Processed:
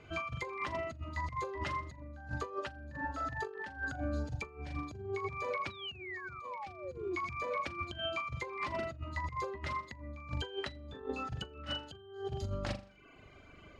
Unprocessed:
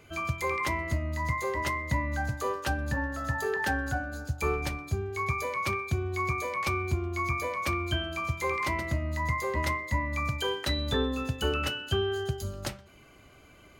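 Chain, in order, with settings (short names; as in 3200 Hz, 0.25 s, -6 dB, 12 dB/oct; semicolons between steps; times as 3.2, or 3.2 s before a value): air absorption 94 m; notch 6200 Hz, Q 30; flutter echo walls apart 7 m, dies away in 0.55 s; painted sound fall, 5.7–7.16, 340–4000 Hz -30 dBFS; reverb removal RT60 0.74 s; negative-ratio compressor -33 dBFS, ratio -0.5; high shelf 11000 Hz -12 dB; gain -5.5 dB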